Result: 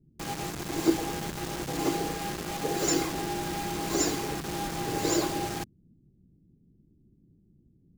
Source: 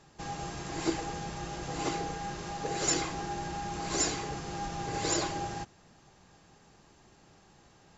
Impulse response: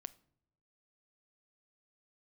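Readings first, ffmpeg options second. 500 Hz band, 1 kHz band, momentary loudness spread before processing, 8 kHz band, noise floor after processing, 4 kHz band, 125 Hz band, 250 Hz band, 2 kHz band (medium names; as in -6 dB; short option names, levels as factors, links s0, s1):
+5.5 dB, +1.5 dB, 9 LU, no reading, -64 dBFS, +2.5 dB, +2.5 dB, +7.0 dB, +2.5 dB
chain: -filter_complex "[0:a]equalizer=f=300:w=0.94:g=8,acrossover=split=260[s0][s1];[s1]acrusher=bits=5:mix=0:aa=0.000001[s2];[s0][s2]amix=inputs=2:normalize=0"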